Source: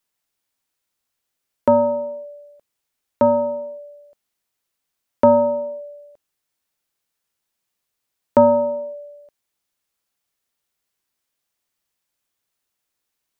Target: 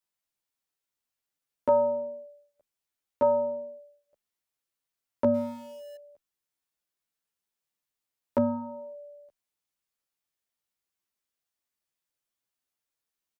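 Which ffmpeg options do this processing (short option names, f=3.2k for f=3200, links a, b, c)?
-filter_complex "[0:a]asettb=1/sr,asplit=3[a][b][c];[a]atrim=end=5.344[d];[b]atrim=start=5.34:end=5.96,asetpts=PTS-STARTPTS,afade=t=in:d=0.004:c=qsin,afade=t=out:st=0.616:d=0.004:c=qsin,aeval=exprs='val(0)+0.5*0.0168*sgn(val(0))':c=same[e];[c]atrim=start=5.956[f];[d][e]acrossfade=d=0.004:c1=hsin:c2=qsin[g];[g][f]acrossfade=d=0.004:c1=qsin:c2=hsin,asplit=2[h][i];[i]adelay=11.4,afreqshift=-0.66[j];[h][j]amix=inputs=2:normalize=1,volume=-6.5dB"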